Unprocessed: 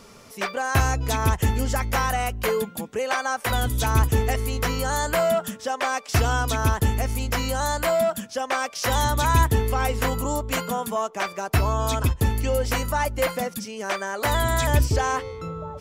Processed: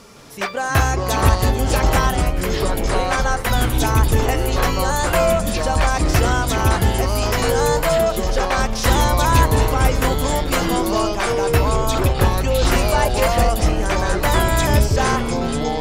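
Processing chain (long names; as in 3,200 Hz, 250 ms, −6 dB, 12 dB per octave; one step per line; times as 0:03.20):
0:02.10–0:03.12: downward compressor, threshold −27 dBFS, peak gain reduction 7.5 dB
harmonic generator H 2 −13 dB, 4 −27 dB, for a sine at −7 dBFS
delay with pitch and tempo change per echo 165 ms, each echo −6 semitones, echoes 3
delay that swaps between a low-pass and a high-pass 219 ms, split 1,100 Hz, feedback 62%, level −13.5 dB
level +3.5 dB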